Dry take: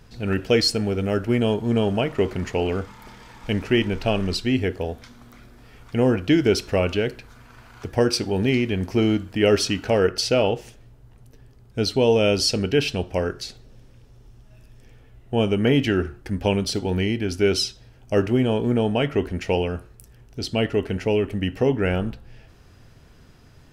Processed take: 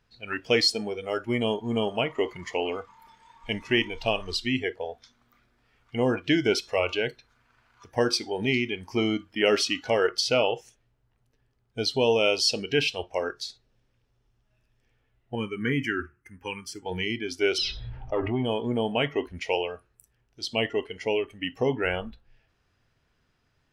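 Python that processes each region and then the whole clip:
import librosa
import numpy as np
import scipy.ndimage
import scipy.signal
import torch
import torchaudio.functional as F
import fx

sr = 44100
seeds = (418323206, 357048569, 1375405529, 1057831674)

y = fx.chain(x, sr, fx.highpass(hz=63.0, slope=12),
    fx.fixed_phaser(hz=1600.0, stages=4), at=(15.35, 16.86))
y = fx.chain(y, sr, fx.air_absorb(metres=340.0),
    fx.tube_stage(drive_db=12.0, bias=0.5),
    fx.env_flatten(amount_pct=70), at=(17.58, 18.45))
y = fx.lowpass(y, sr, hz=2000.0, slope=6)
y = fx.noise_reduce_blind(y, sr, reduce_db=15)
y = fx.tilt_shelf(y, sr, db=-7.0, hz=970.0)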